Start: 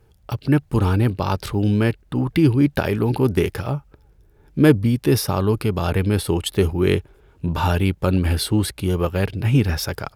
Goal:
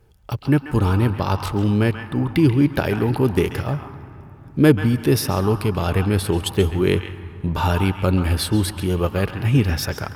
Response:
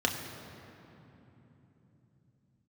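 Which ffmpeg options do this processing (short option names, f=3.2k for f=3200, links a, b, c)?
-filter_complex "[0:a]asplit=2[a][b];[b]equalizer=f=125:t=o:w=1:g=-11,equalizer=f=250:t=o:w=1:g=-9,equalizer=f=500:t=o:w=1:g=-11,equalizer=f=1k:t=o:w=1:g=8,equalizer=f=4k:t=o:w=1:g=-4[c];[1:a]atrim=start_sample=2205,adelay=135[d];[c][d]afir=irnorm=-1:irlink=0,volume=-17dB[e];[a][e]amix=inputs=2:normalize=0"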